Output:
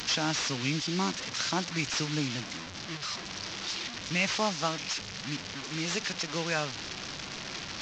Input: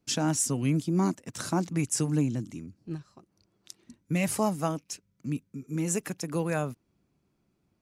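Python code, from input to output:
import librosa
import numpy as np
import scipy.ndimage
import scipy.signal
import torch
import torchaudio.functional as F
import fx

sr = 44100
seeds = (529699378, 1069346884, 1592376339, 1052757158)

y = fx.delta_mod(x, sr, bps=32000, step_db=-33.5)
y = fx.tilt_shelf(y, sr, db=-8.5, hz=1100.0)
y = y * 10.0 ** (1.5 / 20.0)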